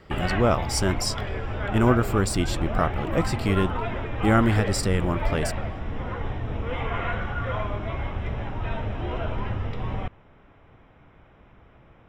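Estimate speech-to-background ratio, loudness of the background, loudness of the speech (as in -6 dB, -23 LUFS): 5.5 dB, -30.5 LUFS, -25.0 LUFS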